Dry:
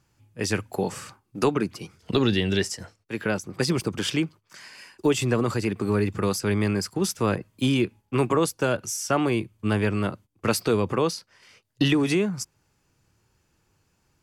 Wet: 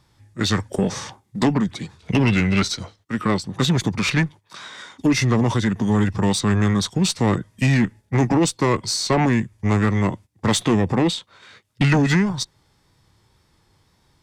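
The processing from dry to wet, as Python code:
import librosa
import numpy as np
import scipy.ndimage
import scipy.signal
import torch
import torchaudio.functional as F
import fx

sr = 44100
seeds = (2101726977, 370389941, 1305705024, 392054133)

y = fx.tube_stage(x, sr, drive_db=19.0, bias=0.25)
y = fx.wow_flutter(y, sr, seeds[0], rate_hz=2.1, depth_cents=29.0)
y = fx.formant_shift(y, sr, semitones=-5)
y = F.gain(torch.from_numpy(y), 8.0).numpy()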